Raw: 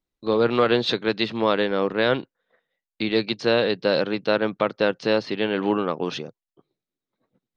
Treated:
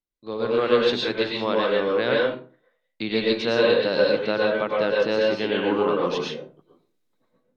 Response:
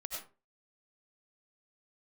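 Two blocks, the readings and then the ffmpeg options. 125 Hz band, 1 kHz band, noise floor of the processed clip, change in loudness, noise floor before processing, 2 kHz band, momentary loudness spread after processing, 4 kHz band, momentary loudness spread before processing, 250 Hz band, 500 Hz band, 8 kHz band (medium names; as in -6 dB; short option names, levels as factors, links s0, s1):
-3.5 dB, -1.0 dB, -75 dBFS, +0.5 dB, under -85 dBFS, +0.5 dB, 9 LU, -0.5 dB, 7 LU, -2.0 dB, +1.5 dB, no reading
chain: -filter_complex "[0:a]dynaudnorm=f=150:g=7:m=5.62[s0];[1:a]atrim=start_sample=2205,asetrate=35280,aresample=44100[s1];[s0][s1]afir=irnorm=-1:irlink=0,volume=0.422"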